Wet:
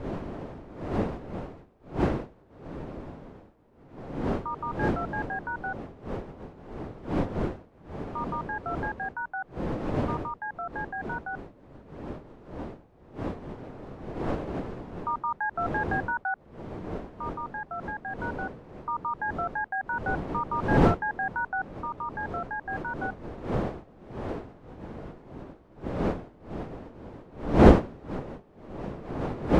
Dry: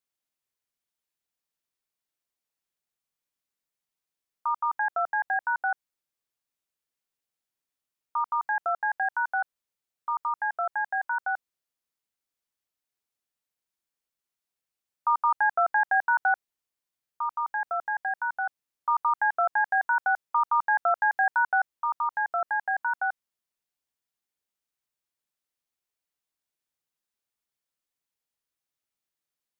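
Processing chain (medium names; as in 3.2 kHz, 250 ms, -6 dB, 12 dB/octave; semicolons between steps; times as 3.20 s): wind noise 450 Hz -25 dBFS; trim -6.5 dB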